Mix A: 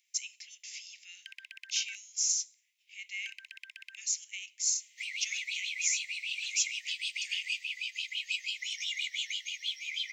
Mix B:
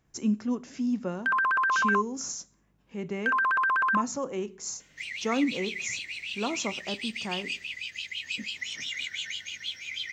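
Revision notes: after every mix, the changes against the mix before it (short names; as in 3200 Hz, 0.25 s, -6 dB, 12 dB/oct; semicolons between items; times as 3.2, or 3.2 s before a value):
speech -7.0 dB; master: remove steep high-pass 2100 Hz 72 dB/oct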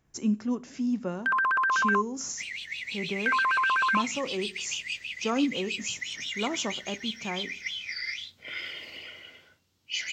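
second sound: entry -2.60 s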